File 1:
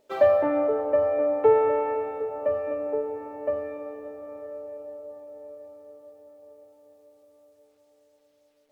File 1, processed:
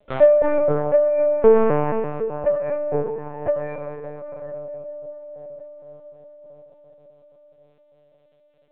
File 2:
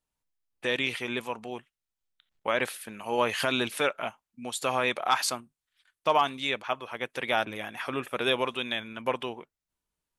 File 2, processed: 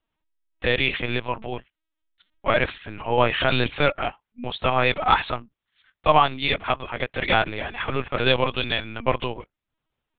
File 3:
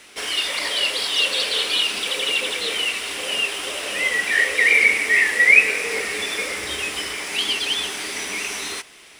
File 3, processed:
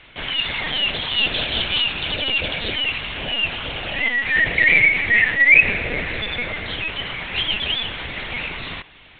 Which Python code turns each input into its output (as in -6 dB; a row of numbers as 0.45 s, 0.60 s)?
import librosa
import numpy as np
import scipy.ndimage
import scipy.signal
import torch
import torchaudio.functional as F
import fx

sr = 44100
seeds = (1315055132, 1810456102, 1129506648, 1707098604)

y = fx.lpc_vocoder(x, sr, seeds[0], excitation='pitch_kept', order=10)
y = librosa.util.normalize(y) * 10.0 ** (-2 / 20.0)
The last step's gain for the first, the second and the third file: +5.5 dB, +7.0 dB, +1.0 dB